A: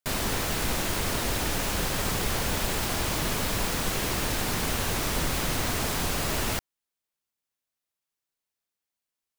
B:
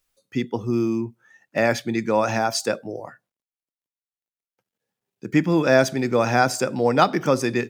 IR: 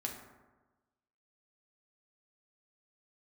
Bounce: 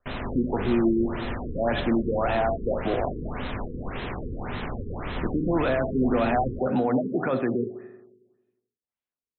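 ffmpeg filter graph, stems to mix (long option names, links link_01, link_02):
-filter_complex "[0:a]highshelf=frequency=5800:gain=-9.5,volume=-6dB,asplit=2[link_01][link_02];[link_02]volume=-4dB[link_03];[1:a]equalizer=frequency=680:width=3.8:gain=6.5,acrossover=split=200|1000[link_04][link_05][link_06];[link_04]acompressor=threshold=-38dB:ratio=4[link_07];[link_05]acompressor=threshold=-21dB:ratio=4[link_08];[link_06]acompressor=threshold=-29dB:ratio=4[link_09];[link_07][link_08][link_09]amix=inputs=3:normalize=0,alimiter=limit=-23dB:level=0:latency=1:release=41,volume=2.5dB,asplit=2[link_10][link_11];[link_11]volume=-3.5dB[link_12];[2:a]atrim=start_sample=2205[link_13];[link_03][link_12]amix=inputs=2:normalize=0[link_14];[link_14][link_13]afir=irnorm=-1:irlink=0[link_15];[link_01][link_10][link_15]amix=inputs=3:normalize=0,afftfilt=real='re*lt(b*sr/1024,480*pow(4200/480,0.5+0.5*sin(2*PI*1.8*pts/sr)))':imag='im*lt(b*sr/1024,480*pow(4200/480,0.5+0.5*sin(2*PI*1.8*pts/sr)))':win_size=1024:overlap=0.75"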